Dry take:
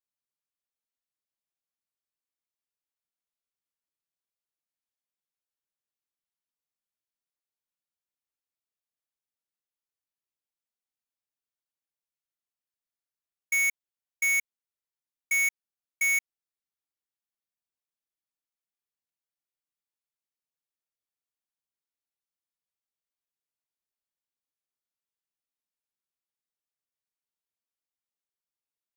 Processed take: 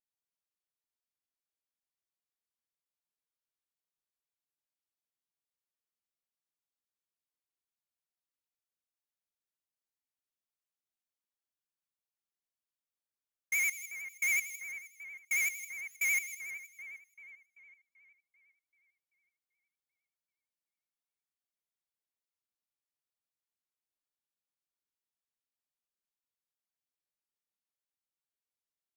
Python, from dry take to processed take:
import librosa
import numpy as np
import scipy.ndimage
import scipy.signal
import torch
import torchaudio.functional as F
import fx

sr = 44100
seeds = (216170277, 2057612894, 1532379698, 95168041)

y = fx.echo_split(x, sr, split_hz=2700.0, low_ms=388, high_ms=159, feedback_pct=52, wet_db=-10.0)
y = fx.vibrato(y, sr, rate_hz=11.0, depth_cents=80.0)
y = y * 10.0 ** (-5.5 / 20.0)